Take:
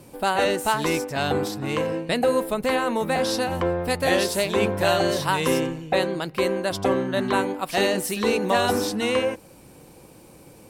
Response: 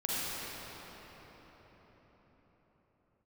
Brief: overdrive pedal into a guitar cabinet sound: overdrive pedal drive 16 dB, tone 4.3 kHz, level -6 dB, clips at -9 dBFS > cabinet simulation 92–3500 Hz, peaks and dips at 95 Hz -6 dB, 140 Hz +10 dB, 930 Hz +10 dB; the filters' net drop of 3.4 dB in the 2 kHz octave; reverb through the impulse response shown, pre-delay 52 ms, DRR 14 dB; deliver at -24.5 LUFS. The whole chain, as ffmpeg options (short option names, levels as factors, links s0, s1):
-filter_complex "[0:a]equalizer=f=2000:t=o:g=-5,asplit=2[s0][s1];[1:a]atrim=start_sample=2205,adelay=52[s2];[s1][s2]afir=irnorm=-1:irlink=0,volume=0.0794[s3];[s0][s3]amix=inputs=2:normalize=0,asplit=2[s4][s5];[s5]highpass=f=720:p=1,volume=6.31,asoftclip=type=tanh:threshold=0.355[s6];[s4][s6]amix=inputs=2:normalize=0,lowpass=f=4300:p=1,volume=0.501,highpass=92,equalizer=f=95:t=q:w=4:g=-6,equalizer=f=140:t=q:w=4:g=10,equalizer=f=930:t=q:w=4:g=10,lowpass=f=3500:w=0.5412,lowpass=f=3500:w=1.3066,volume=0.447"